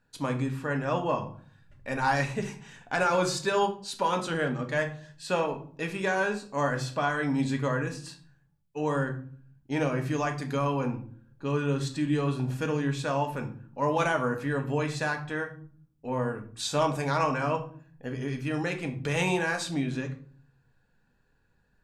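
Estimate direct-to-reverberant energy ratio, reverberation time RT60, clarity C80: 4.5 dB, 0.50 s, 16.5 dB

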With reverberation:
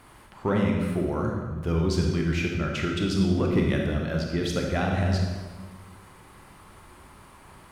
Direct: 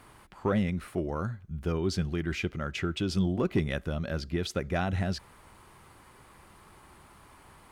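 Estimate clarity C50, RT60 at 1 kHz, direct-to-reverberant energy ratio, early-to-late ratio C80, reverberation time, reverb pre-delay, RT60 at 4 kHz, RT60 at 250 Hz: 2.0 dB, 1.3 s, 0.0 dB, 4.0 dB, 1.4 s, 27 ms, 1.1 s, 1.8 s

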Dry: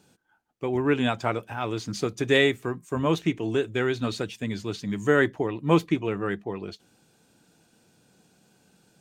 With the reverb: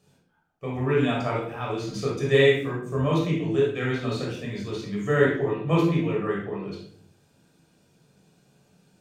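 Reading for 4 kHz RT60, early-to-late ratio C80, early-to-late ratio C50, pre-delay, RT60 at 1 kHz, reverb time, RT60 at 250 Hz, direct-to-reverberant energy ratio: 0.45 s, 8.0 dB, 2.0 dB, 17 ms, 0.55 s, 0.60 s, 0.80 s, −4.5 dB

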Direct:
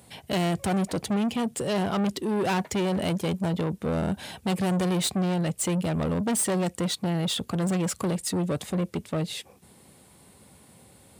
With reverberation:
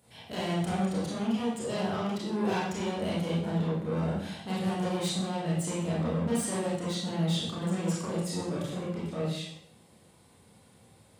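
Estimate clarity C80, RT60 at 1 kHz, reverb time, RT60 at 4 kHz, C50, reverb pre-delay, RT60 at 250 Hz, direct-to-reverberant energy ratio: 4.0 dB, 0.65 s, 0.65 s, 0.60 s, 0.0 dB, 26 ms, 0.75 s, −8.5 dB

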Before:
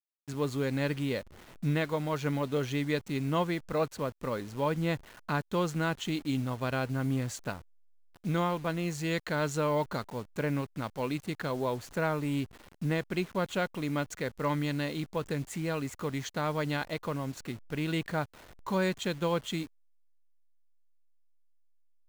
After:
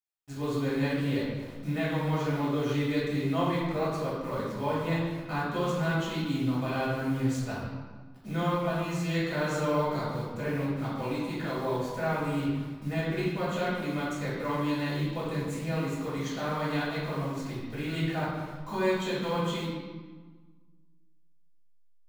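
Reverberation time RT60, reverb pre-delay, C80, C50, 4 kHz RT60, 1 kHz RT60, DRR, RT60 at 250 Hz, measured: 1.4 s, 3 ms, 2.0 dB, −0.5 dB, 1.1 s, 1.4 s, −9.0 dB, 1.8 s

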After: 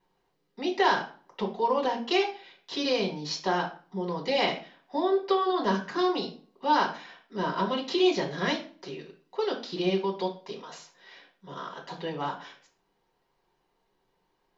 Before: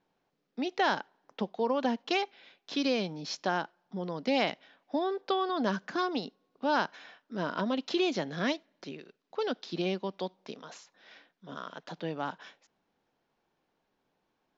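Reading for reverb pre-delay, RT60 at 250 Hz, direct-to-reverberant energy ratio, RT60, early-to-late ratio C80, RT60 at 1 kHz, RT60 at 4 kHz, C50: 3 ms, 0.50 s, −2.5 dB, 0.40 s, 15.0 dB, 0.40 s, 0.35 s, 10.5 dB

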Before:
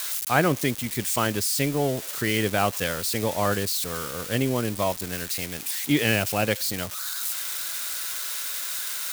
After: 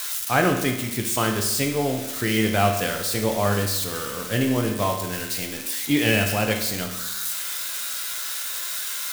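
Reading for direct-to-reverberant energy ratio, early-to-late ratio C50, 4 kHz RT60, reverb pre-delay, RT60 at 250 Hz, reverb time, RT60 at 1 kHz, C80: 2.5 dB, 6.0 dB, 0.90 s, 9 ms, 1.0 s, 1.0 s, 1.0 s, 8.5 dB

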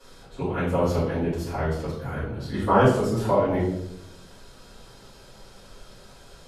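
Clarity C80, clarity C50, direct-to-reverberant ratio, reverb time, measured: 7.0 dB, 3.0 dB, −13.0 dB, 0.80 s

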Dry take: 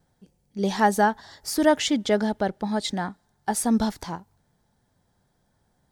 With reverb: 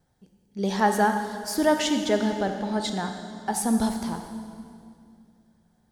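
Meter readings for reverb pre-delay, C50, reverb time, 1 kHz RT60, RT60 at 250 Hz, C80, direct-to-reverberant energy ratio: 30 ms, 6.0 dB, 2.4 s, 2.2 s, 3.0 s, 7.0 dB, 5.5 dB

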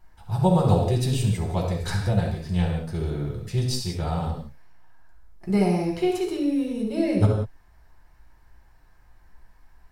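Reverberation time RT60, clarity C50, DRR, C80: non-exponential decay, 3.0 dB, −1.5 dB, 6.0 dB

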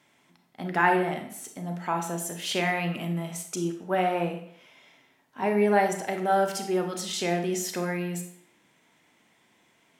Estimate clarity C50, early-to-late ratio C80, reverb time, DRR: 8.0 dB, 11.5 dB, 0.60 s, 5.0 dB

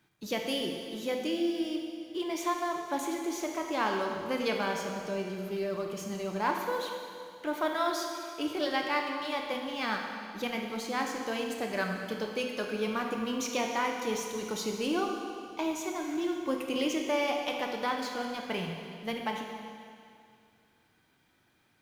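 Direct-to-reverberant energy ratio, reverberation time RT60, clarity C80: 2.0 dB, 2.3 s, 4.5 dB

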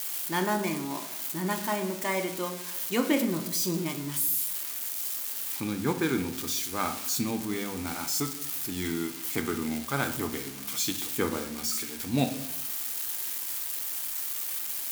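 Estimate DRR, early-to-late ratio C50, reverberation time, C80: 6.0 dB, 11.0 dB, 0.75 s, 14.0 dB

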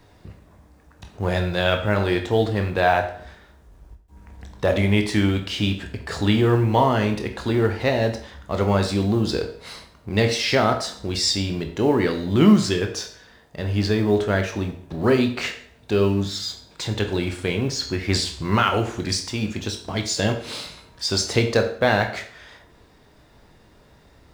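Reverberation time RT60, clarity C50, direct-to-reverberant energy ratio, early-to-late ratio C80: 0.50 s, 10.0 dB, 5.0 dB, 13.5 dB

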